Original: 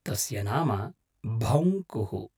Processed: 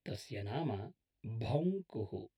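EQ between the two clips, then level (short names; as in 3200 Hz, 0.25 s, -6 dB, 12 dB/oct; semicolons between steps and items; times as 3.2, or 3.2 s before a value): air absorption 140 m; tone controls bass -6 dB, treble +6 dB; fixed phaser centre 2900 Hz, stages 4; -6.0 dB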